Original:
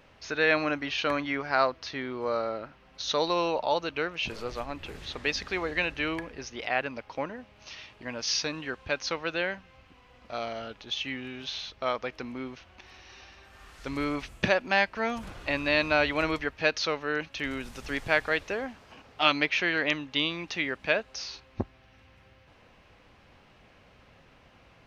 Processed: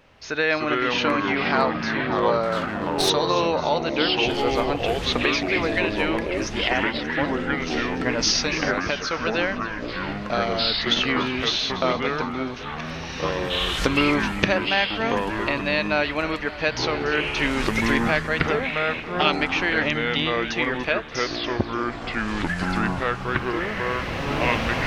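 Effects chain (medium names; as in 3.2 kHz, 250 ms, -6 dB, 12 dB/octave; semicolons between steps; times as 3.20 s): recorder AGC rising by 9.9 dB/s; ever faster or slower copies 221 ms, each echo -4 st, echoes 3; two-band feedback delay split 690 Hz, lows 568 ms, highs 290 ms, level -15 dB; 2.43–3.10 s: sliding maximum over 3 samples; trim +1.5 dB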